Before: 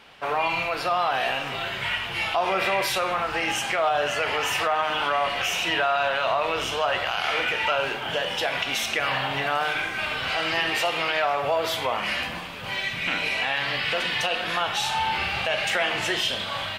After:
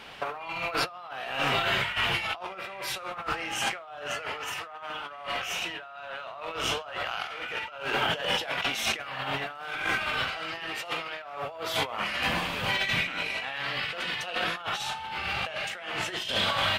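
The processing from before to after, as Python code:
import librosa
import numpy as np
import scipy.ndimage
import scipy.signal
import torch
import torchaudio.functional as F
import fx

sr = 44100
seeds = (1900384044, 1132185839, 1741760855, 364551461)

y = fx.dynamic_eq(x, sr, hz=1300.0, q=4.4, threshold_db=-39.0, ratio=4.0, max_db=5)
y = fx.over_compress(y, sr, threshold_db=-30.0, ratio=-0.5)
y = y * 10.0 ** (-1.0 / 20.0)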